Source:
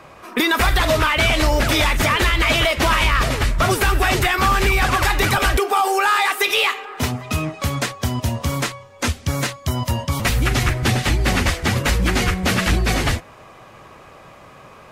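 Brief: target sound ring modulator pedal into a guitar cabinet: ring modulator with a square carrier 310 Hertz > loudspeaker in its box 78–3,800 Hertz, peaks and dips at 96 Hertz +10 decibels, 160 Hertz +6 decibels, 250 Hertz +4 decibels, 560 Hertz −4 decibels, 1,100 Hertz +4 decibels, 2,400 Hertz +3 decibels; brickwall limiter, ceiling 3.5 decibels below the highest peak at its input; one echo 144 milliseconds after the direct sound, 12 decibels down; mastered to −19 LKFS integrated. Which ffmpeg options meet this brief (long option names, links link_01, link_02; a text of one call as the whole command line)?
ffmpeg -i in.wav -af "alimiter=limit=-12dB:level=0:latency=1,aecho=1:1:144:0.251,aeval=exprs='val(0)*sgn(sin(2*PI*310*n/s))':channel_layout=same,highpass=78,equalizer=frequency=96:width_type=q:width=4:gain=10,equalizer=frequency=160:width_type=q:width=4:gain=6,equalizer=frequency=250:width_type=q:width=4:gain=4,equalizer=frequency=560:width_type=q:width=4:gain=-4,equalizer=frequency=1100:width_type=q:width=4:gain=4,equalizer=frequency=2400:width_type=q:width=4:gain=3,lowpass=frequency=3800:width=0.5412,lowpass=frequency=3800:width=1.3066,volume=-0.5dB" out.wav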